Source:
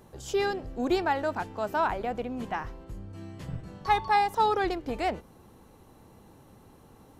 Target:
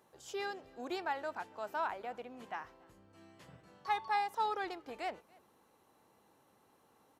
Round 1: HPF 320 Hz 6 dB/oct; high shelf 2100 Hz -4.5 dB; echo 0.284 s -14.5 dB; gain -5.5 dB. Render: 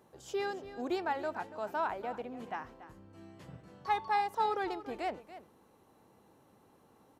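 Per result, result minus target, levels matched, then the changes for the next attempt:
echo-to-direct +12 dB; 250 Hz band +3.5 dB
change: echo 0.284 s -26.5 dB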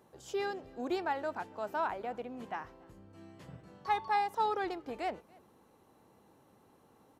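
250 Hz band +3.5 dB
change: HPF 930 Hz 6 dB/oct

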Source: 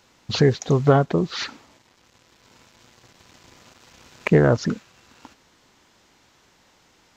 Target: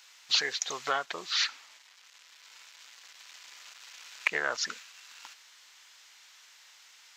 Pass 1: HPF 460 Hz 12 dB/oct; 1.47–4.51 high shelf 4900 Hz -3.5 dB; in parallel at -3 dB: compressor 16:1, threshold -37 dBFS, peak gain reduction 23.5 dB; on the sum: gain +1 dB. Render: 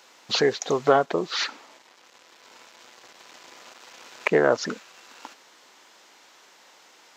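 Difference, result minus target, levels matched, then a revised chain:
500 Hz band +12.0 dB
HPF 1800 Hz 12 dB/oct; 1.47–4.51 high shelf 4900 Hz -3.5 dB; in parallel at -3 dB: compressor 16:1, threshold -37 dBFS, peak gain reduction 15.5 dB; on the sum: gain +1 dB

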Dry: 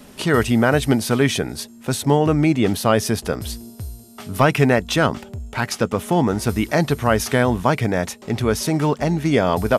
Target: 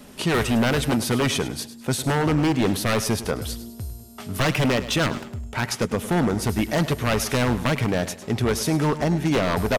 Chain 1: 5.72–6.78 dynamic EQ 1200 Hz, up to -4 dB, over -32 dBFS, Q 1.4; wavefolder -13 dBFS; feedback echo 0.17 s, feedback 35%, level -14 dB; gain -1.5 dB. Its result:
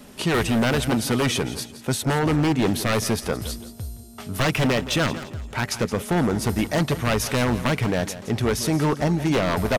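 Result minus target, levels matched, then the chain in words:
echo 67 ms late
5.72–6.78 dynamic EQ 1200 Hz, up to -4 dB, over -32 dBFS, Q 1.4; wavefolder -13 dBFS; feedback echo 0.103 s, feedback 35%, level -14 dB; gain -1.5 dB

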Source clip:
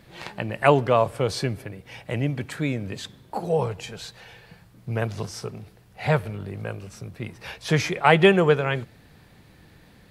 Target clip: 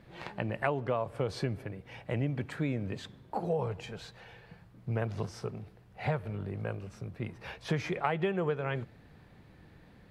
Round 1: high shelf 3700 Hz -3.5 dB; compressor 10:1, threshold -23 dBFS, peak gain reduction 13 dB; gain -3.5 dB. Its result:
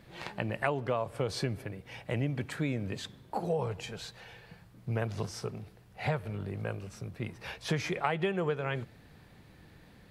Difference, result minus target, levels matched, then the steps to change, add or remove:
8000 Hz band +7.0 dB
change: high shelf 3700 Hz -13 dB

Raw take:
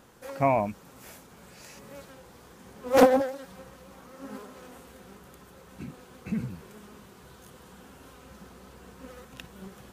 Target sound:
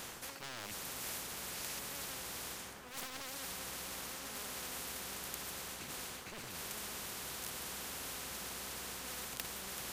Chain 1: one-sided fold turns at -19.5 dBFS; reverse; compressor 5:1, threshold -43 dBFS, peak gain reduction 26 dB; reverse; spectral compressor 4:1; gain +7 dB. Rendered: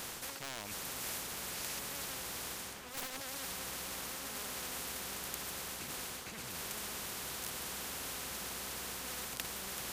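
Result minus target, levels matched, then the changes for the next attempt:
one-sided fold: distortion -13 dB
change: one-sided fold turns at -31.5 dBFS

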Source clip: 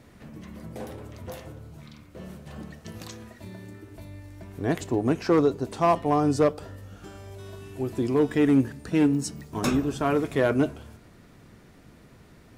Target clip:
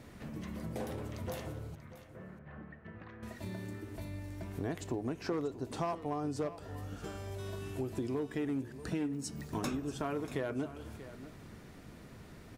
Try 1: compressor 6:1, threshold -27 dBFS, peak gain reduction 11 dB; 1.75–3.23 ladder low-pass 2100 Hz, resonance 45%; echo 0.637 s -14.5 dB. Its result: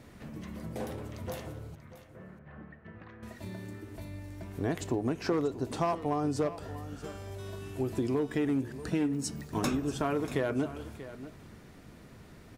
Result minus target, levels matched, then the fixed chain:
compressor: peak gain reduction -6 dB
compressor 6:1, threshold -34 dBFS, peak gain reduction 17 dB; 1.75–3.23 ladder low-pass 2100 Hz, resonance 45%; echo 0.637 s -14.5 dB

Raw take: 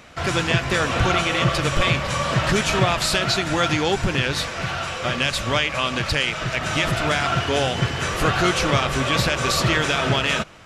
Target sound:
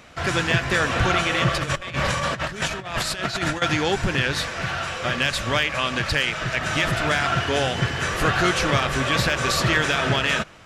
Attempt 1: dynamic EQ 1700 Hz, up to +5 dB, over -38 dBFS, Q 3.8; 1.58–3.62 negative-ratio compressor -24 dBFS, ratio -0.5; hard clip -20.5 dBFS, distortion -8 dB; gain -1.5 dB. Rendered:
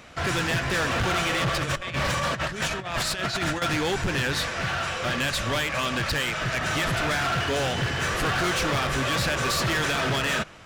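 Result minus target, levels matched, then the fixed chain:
hard clip: distortion +25 dB
dynamic EQ 1700 Hz, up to +5 dB, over -38 dBFS, Q 3.8; 1.58–3.62 negative-ratio compressor -24 dBFS, ratio -0.5; hard clip -8.5 dBFS, distortion -33 dB; gain -1.5 dB

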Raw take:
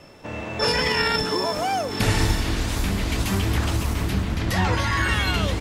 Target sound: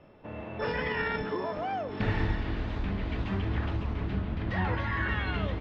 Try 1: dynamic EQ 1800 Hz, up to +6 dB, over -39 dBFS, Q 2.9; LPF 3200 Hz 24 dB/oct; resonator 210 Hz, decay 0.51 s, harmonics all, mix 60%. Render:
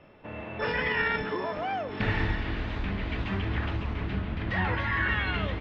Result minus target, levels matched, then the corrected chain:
2000 Hz band +3.0 dB
dynamic EQ 1800 Hz, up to +6 dB, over -39 dBFS, Q 2.9; LPF 3200 Hz 24 dB/oct; bell 2300 Hz -6 dB 1.8 oct; resonator 210 Hz, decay 0.51 s, harmonics all, mix 60%

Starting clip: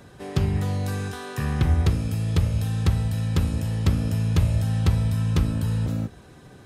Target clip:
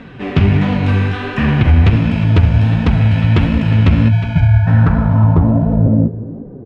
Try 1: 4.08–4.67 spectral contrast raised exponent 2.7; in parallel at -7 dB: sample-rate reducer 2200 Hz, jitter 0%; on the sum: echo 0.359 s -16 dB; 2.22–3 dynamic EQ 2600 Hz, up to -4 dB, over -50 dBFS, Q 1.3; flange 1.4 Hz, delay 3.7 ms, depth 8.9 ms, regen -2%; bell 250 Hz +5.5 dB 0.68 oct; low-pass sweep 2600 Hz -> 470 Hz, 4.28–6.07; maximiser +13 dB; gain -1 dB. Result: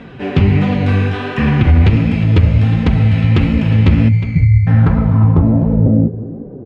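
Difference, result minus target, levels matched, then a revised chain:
sample-rate reducer: distortion -7 dB
4.08–4.67 spectral contrast raised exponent 2.7; in parallel at -7 dB: sample-rate reducer 790 Hz, jitter 0%; on the sum: echo 0.359 s -16 dB; 2.22–3 dynamic EQ 2600 Hz, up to -4 dB, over -50 dBFS, Q 1.3; flange 1.4 Hz, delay 3.7 ms, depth 8.9 ms, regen -2%; bell 250 Hz +5.5 dB 0.68 oct; low-pass sweep 2600 Hz -> 470 Hz, 4.28–6.07; maximiser +13 dB; gain -1 dB

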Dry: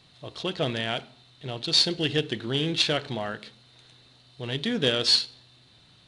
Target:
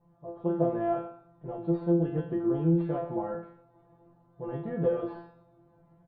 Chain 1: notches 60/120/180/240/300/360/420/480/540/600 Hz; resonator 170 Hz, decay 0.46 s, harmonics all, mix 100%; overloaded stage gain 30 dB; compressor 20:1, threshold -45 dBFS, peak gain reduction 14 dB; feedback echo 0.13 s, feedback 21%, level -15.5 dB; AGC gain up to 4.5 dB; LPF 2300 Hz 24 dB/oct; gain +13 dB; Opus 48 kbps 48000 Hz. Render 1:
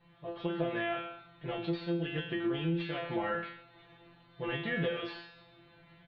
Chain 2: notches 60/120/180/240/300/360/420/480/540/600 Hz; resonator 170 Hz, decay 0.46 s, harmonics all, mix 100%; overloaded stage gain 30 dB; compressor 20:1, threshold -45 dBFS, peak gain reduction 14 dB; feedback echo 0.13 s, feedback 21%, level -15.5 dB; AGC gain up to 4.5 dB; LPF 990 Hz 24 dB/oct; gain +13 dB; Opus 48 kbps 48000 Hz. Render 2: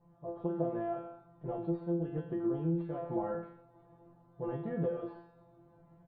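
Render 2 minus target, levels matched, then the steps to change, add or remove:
compressor: peak gain reduction +8.5 dB
change: compressor 20:1, threshold -36 dBFS, peak gain reduction 5.5 dB

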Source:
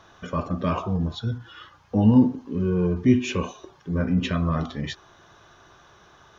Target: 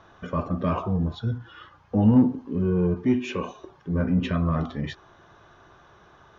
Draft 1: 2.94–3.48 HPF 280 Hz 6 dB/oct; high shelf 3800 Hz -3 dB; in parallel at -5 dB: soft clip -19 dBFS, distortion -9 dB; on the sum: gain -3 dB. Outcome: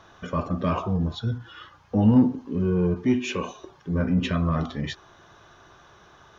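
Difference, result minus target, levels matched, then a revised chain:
8000 Hz band +8.0 dB
2.94–3.48 HPF 280 Hz 6 dB/oct; high shelf 3800 Hz -14 dB; in parallel at -5 dB: soft clip -19 dBFS, distortion -9 dB; on the sum: gain -3 dB

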